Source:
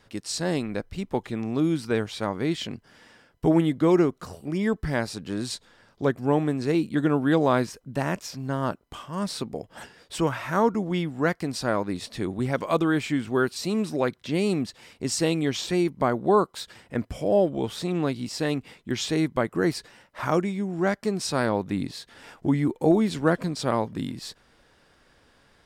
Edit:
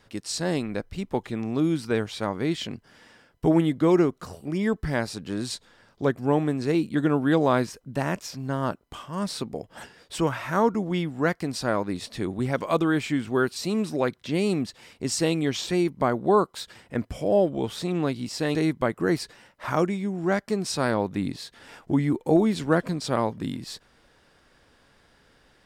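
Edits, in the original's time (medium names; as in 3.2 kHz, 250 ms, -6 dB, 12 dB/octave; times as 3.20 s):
18.55–19.10 s: delete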